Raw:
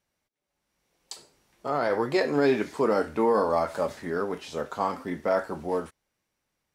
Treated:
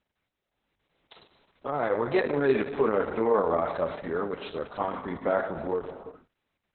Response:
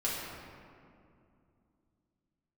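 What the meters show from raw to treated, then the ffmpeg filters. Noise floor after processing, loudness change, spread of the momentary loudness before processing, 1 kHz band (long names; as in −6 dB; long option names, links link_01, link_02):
−84 dBFS, −1.0 dB, 16 LU, −2.0 dB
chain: -filter_complex "[0:a]asplit=2[link_01][link_02];[1:a]atrim=start_sample=2205,afade=type=out:start_time=0.34:duration=0.01,atrim=end_sample=15435,adelay=103[link_03];[link_02][link_03]afir=irnorm=-1:irlink=0,volume=-17dB[link_04];[link_01][link_04]amix=inputs=2:normalize=0" -ar 48000 -c:a libopus -b:a 6k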